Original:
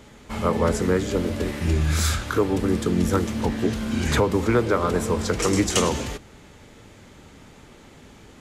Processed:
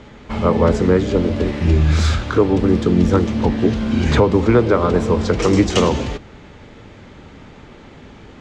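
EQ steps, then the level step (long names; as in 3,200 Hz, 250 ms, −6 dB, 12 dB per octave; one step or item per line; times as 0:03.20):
high-frequency loss of the air 150 metres
dynamic equaliser 1,600 Hz, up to −4 dB, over −41 dBFS, Q 1.1
+7.5 dB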